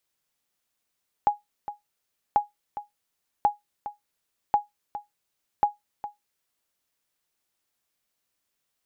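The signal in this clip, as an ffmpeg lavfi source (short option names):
-f lavfi -i "aevalsrc='0.266*(sin(2*PI*828*mod(t,1.09))*exp(-6.91*mod(t,1.09)/0.16)+0.211*sin(2*PI*828*max(mod(t,1.09)-0.41,0))*exp(-6.91*max(mod(t,1.09)-0.41,0)/0.16))':d=5.45:s=44100"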